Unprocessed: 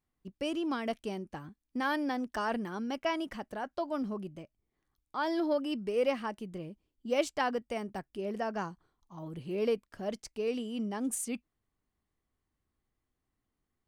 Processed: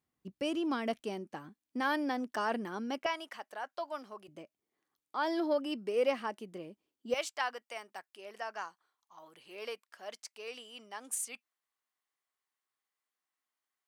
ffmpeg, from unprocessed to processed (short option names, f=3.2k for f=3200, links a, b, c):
-af "asetnsamples=n=441:p=0,asendcmd='1 highpass f 220;3.06 highpass f 730;4.28 highpass f 290;7.14 highpass f 940',highpass=99"